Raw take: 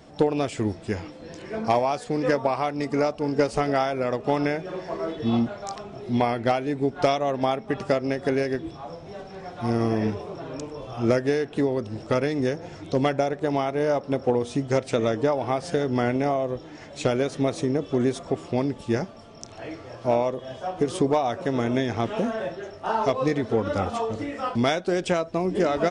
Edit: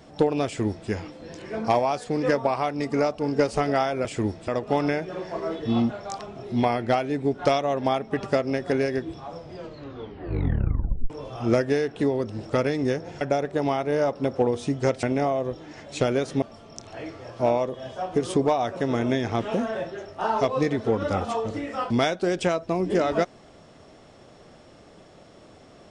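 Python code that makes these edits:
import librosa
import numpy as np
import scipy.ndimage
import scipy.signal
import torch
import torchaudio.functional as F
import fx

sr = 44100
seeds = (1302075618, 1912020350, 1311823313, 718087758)

y = fx.edit(x, sr, fx.duplicate(start_s=0.46, length_s=0.43, to_s=4.05),
    fx.tape_stop(start_s=8.96, length_s=1.71),
    fx.cut(start_s=12.78, length_s=0.31),
    fx.cut(start_s=14.91, length_s=1.16),
    fx.cut(start_s=17.46, length_s=1.61), tone=tone)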